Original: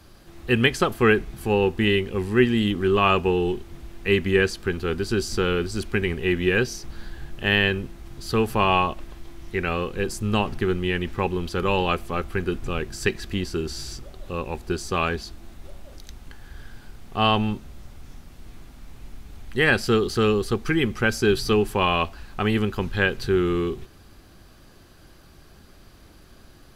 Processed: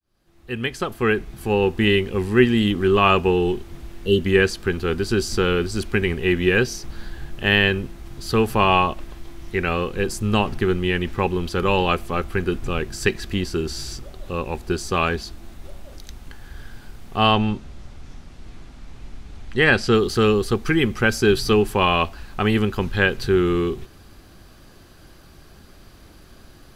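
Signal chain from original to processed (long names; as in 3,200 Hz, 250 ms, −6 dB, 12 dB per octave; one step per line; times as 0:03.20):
fade in at the beginning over 1.91 s
0:03.97–0:04.23: healed spectral selection 680–2,700 Hz before
0:17.33–0:19.94: low-pass filter 7,300 Hz 12 dB per octave
level +3 dB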